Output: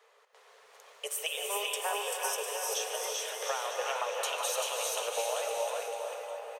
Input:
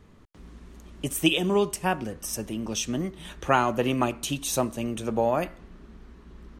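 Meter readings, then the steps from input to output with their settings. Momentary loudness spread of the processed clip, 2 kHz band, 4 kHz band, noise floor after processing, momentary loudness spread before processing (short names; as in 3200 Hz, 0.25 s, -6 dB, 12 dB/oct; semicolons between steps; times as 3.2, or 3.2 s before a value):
5 LU, -4.5 dB, -2.5 dB, -62 dBFS, 9 LU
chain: Chebyshev high-pass 430 Hz, order 8; compressor 10:1, threshold -32 dBFS, peak gain reduction 15 dB; on a send: bouncing-ball echo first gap 0.39 s, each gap 0.8×, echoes 5; on the sum: non-linear reverb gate 0.44 s rising, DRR 1.5 dB; lo-fi delay 0.149 s, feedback 35%, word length 10-bit, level -13.5 dB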